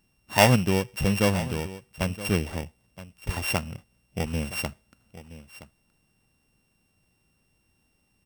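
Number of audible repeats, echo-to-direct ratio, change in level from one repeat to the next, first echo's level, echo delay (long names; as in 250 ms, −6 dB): 1, −16.0 dB, repeats not evenly spaced, −16.0 dB, 971 ms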